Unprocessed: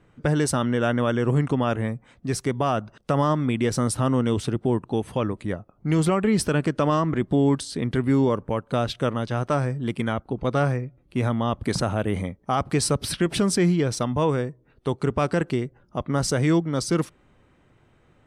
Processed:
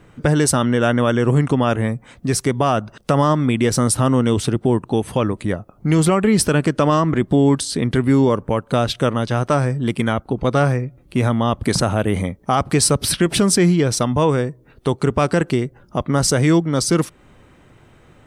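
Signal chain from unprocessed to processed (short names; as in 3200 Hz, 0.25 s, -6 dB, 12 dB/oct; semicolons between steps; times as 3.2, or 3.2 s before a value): high shelf 6800 Hz +6.5 dB; in parallel at 0 dB: compressor, threshold -33 dBFS, peak gain reduction 15.5 dB; on the sum: gain +4 dB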